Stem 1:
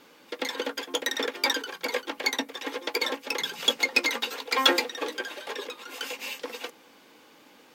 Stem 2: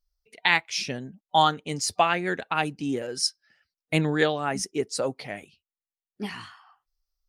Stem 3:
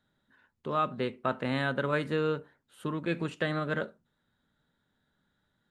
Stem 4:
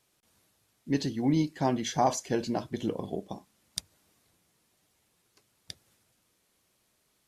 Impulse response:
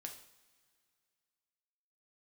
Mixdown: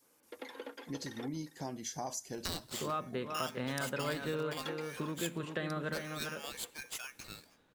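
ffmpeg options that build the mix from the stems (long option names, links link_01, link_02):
-filter_complex "[0:a]agate=range=-33dB:threshold=-50dB:ratio=3:detection=peak,lowpass=frequency=1600:poles=1,volume=-11.5dB,asplit=3[link_01][link_02][link_03];[link_01]atrim=end=1.28,asetpts=PTS-STARTPTS,afade=type=out:start_time=1.276:duration=0.004:curve=hsin[link_04];[link_02]atrim=start=1.28:end=3.26,asetpts=PTS-STARTPTS,volume=0[link_05];[link_03]atrim=start=3.26,asetpts=PTS-STARTPTS,afade=type=in:duration=0.004:curve=hsin[link_06];[link_04][link_05][link_06]concat=n=3:v=0:a=1,asplit=2[link_07][link_08];[link_08]volume=-14.5dB[link_09];[1:a]tiltshelf=frequency=970:gain=-7,bandreject=frequency=60:width_type=h:width=6,bandreject=frequency=120:width_type=h:width=6,bandreject=frequency=180:width_type=h:width=6,bandreject=frequency=240:width_type=h:width=6,bandreject=frequency=300:width_type=h:width=6,bandreject=frequency=360:width_type=h:width=6,bandreject=frequency=420:width_type=h:width=6,aeval=exprs='val(0)*sgn(sin(2*PI*2000*n/s))':channel_layout=same,adelay=2000,volume=-14.5dB,asplit=2[link_10][link_11];[link_11]volume=-10.5dB[link_12];[2:a]adelay=2150,volume=2dB,asplit=2[link_13][link_14];[link_14]volume=-8dB[link_15];[3:a]aexciter=amount=2.8:drive=7.3:freq=4800,volume=-9.5dB,asplit=2[link_16][link_17];[link_17]volume=-18dB[link_18];[4:a]atrim=start_sample=2205[link_19];[link_12][link_18]amix=inputs=2:normalize=0[link_20];[link_20][link_19]afir=irnorm=-1:irlink=0[link_21];[link_09][link_15]amix=inputs=2:normalize=0,aecho=0:1:401:1[link_22];[link_07][link_10][link_13][link_16][link_21][link_22]amix=inputs=6:normalize=0,acompressor=threshold=-41dB:ratio=2"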